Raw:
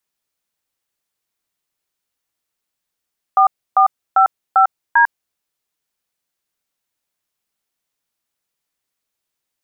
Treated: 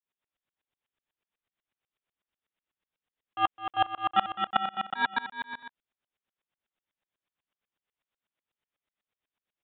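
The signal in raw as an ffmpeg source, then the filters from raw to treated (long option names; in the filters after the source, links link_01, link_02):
-f lavfi -i "aevalsrc='0.299*clip(min(mod(t,0.396),0.099-mod(t,0.396))/0.002,0,1)*(eq(floor(t/0.396),0)*(sin(2*PI*770*mod(t,0.396))+sin(2*PI*1209*mod(t,0.396)))+eq(floor(t/0.396),1)*(sin(2*PI*770*mod(t,0.396))+sin(2*PI*1209*mod(t,0.396)))+eq(floor(t/0.396),2)*(sin(2*PI*770*mod(t,0.396))+sin(2*PI*1336*mod(t,0.396)))+eq(floor(t/0.396),3)*(sin(2*PI*770*mod(t,0.396))+sin(2*PI*1336*mod(t,0.396)))+eq(floor(t/0.396),4)*(sin(2*PI*941*mod(t,0.396))+sin(2*PI*1633*mod(t,0.396))))':duration=1.98:sample_rate=44100"
-af "aresample=8000,asoftclip=type=tanh:threshold=-16dB,aresample=44100,aecho=1:1:210|367.5|485.6|574.2|640.7:0.631|0.398|0.251|0.158|0.1,aeval=exprs='val(0)*pow(10,-27*if(lt(mod(-8.1*n/s,1),2*abs(-8.1)/1000),1-mod(-8.1*n/s,1)/(2*abs(-8.1)/1000),(mod(-8.1*n/s,1)-2*abs(-8.1)/1000)/(1-2*abs(-8.1)/1000))/20)':channel_layout=same"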